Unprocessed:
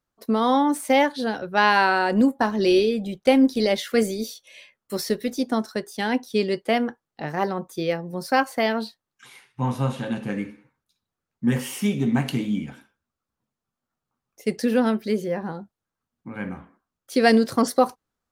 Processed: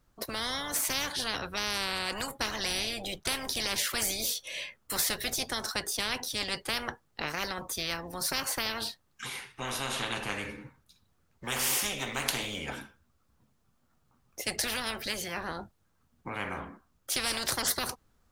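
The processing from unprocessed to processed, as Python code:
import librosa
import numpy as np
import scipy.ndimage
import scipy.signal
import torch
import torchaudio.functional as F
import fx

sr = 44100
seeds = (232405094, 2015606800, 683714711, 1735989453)

y = fx.low_shelf(x, sr, hz=130.0, db=11.0)
y = fx.spectral_comp(y, sr, ratio=10.0)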